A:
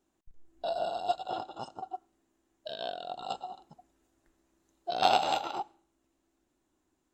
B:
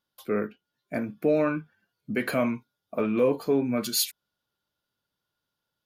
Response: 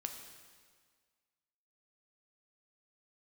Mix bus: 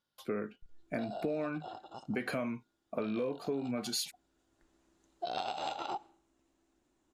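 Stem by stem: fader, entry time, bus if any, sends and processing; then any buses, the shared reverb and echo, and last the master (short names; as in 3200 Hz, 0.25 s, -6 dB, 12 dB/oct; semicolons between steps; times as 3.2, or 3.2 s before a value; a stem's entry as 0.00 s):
+1.5 dB, 0.35 s, no send, compressor 4:1, threshold -34 dBFS, peak gain reduction 12.5 dB; auto duck -8 dB, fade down 1.75 s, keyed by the second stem
-2.0 dB, 0.00 s, no send, dry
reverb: off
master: LPF 9400 Hz 12 dB/oct; compressor 6:1, threshold -32 dBFS, peak gain reduction 11.5 dB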